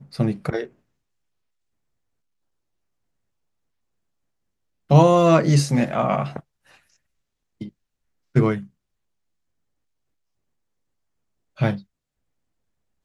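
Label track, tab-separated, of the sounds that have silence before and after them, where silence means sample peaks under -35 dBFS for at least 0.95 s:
4.900000	6.400000	sound
7.610000	8.640000	sound
11.590000	11.790000	sound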